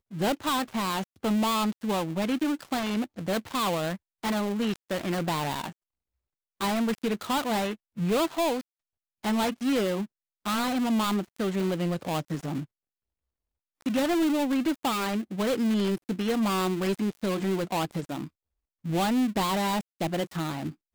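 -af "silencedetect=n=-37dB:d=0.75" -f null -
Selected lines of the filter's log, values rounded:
silence_start: 5.71
silence_end: 6.61 | silence_duration: 0.90
silence_start: 12.64
silence_end: 13.82 | silence_duration: 1.18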